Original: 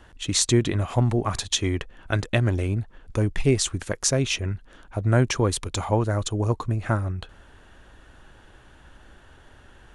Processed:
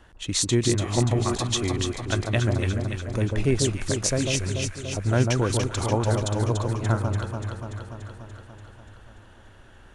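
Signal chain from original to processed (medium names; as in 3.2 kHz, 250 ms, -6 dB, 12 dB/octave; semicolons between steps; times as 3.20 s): echo whose repeats swap between lows and highs 145 ms, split 1.2 kHz, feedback 81%, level -3.5 dB; trim -2.5 dB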